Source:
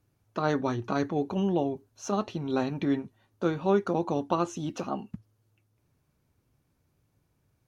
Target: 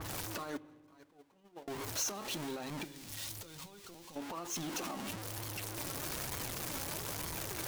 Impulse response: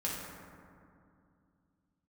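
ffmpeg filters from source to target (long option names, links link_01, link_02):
-filter_complex "[0:a]aeval=exprs='val(0)+0.5*0.0355*sgn(val(0))':channel_layout=same,asettb=1/sr,asplit=3[link_01][link_02][link_03];[link_01]atrim=end=0.574[link_04];[link_02]atrim=start=0.57:end=1.68,asetpts=PTS-STARTPTS,afade=type=in:duration=0.004:curve=qsin,afade=type=out:start_time=1.106:duration=0.004:curve=qsin,agate=range=-37dB:threshold=-19dB:ratio=16:detection=peak[link_05];[link_03]atrim=start=1.676[link_06];[link_04][link_05]acrossfade=duration=0.004:curve1=hsin:curve2=qsin[link_07];[link_07][link_06]acrossfade=duration=0.004:curve1=qsin:curve2=hsin,lowshelf=frequency=280:gain=-10.5,acompressor=threshold=-35dB:ratio=6,alimiter=level_in=9dB:limit=-24dB:level=0:latency=1:release=35,volume=-9dB,asettb=1/sr,asplit=3[link_08][link_09][link_10];[link_08]atrim=end=2.844[link_11];[link_09]atrim=start=2.84:end=4.16,asetpts=PTS-STARTPTS,afade=type=in:duration=0.004:curve=qsin,afade=type=out:start_time=1.316:duration=0.004:curve=qsin,acrossover=split=130|3000[link_12][link_13][link_14];[link_13]acompressor=threshold=-55dB:ratio=6[link_15];[link_12][link_15][link_14]amix=inputs=3:normalize=0[link_16];[link_10]atrim=start=4.156[link_17];[link_11][link_16]acrossfade=duration=0.004:curve1=hsin:curve2=qsin[link_18];[link_18][link_17]acrossfade=duration=0.004:curve1=qsin:curve2=hsin,flanger=delay=0.9:depth=2.8:regen=63:speed=1.1:shape=sinusoidal,asplit=2[link_19][link_20];[1:a]atrim=start_sample=2205,asetrate=79380,aresample=44100[link_21];[link_20][link_21]afir=irnorm=-1:irlink=0,volume=-15dB[link_22];[link_19][link_22]amix=inputs=2:normalize=0,adynamicequalizer=threshold=0.00316:dfrequency=4100:dqfactor=0.7:tfrequency=4100:tqfactor=0.7:attack=5:release=100:ratio=0.375:range=2:mode=boostabove:tftype=highshelf,volume=4dB"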